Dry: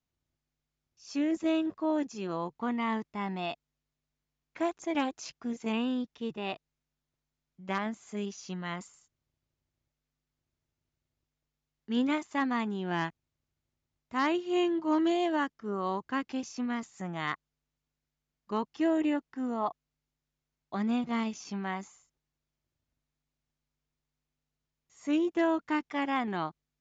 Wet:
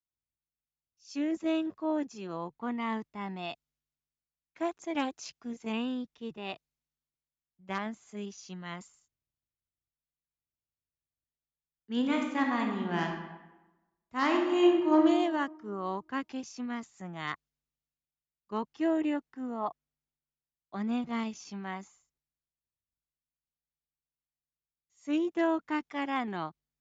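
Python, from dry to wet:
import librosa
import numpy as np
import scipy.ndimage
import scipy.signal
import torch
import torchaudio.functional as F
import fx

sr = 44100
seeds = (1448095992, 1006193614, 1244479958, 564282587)

y = fx.reverb_throw(x, sr, start_s=11.96, length_s=3.05, rt60_s=1.5, drr_db=1.5)
y = fx.band_widen(y, sr, depth_pct=40)
y = y * 10.0 ** (-2.0 / 20.0)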